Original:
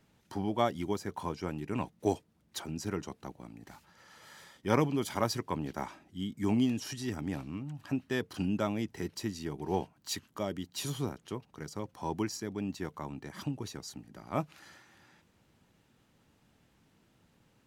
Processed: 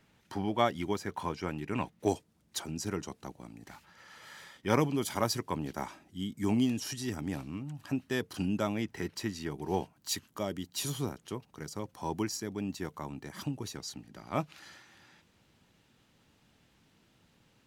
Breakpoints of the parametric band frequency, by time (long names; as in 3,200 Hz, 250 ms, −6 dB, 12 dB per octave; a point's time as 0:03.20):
parametric band +5 dB 1.9 octaves
2,100 Hz
from 0:02.08 8,000 Hz
from 0:03.68 2,200 Hz
from 0:04.71 11,000 Hz
from 0:08.75 1,700 Hz
from 0:09.51 14,000 Hz
from 0:13.75 3,700 Hz